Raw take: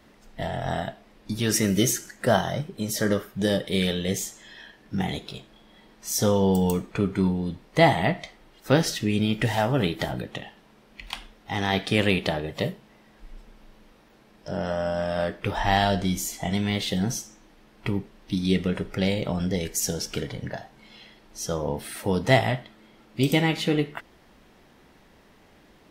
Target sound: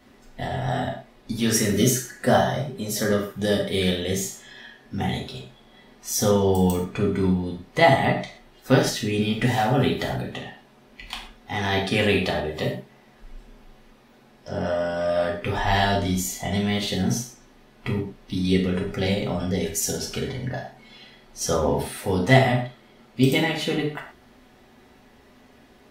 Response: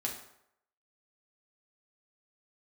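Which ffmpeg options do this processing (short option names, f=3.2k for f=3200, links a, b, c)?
-filter_complex "[0:a]asettb=1/sr,asplit=3[a][b][c];[a]atrim=end=21.414[d];[b]atrim=start=21.41:end=21.83,asetpts=PTS-STARTPTS,afade=t=in:d=0.004:c=qsin,afade=t=out:st=0.416:d=0.004:c=qsin,acontrast=26[e];[c]atrim=start=21.826[f];[d][e]acrossfade=d=0.004:c1=hsin:c2=qsin[g];[g][f]acrossfade=d=0.004:c1=qsin:c2=hsin[h];[1:a]atrim=start_sample=2205,atrim=end_sample=6174[i];[h][i]afir=irnorm=-1:irlink=0"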